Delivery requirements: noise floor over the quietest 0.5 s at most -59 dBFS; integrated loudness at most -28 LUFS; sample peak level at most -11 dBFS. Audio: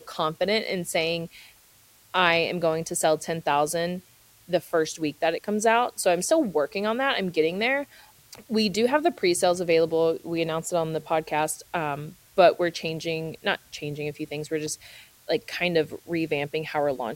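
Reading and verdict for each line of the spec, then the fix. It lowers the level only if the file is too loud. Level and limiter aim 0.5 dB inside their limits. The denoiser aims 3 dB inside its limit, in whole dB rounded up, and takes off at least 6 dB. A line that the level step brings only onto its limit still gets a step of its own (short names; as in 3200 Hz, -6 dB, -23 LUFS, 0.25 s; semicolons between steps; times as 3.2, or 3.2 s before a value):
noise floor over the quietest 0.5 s -57 dBFS: fail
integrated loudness -25.5 LUFS: fail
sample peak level -4.5 dBFS: fail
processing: gain -3 dB; limiter -11.5 dBFS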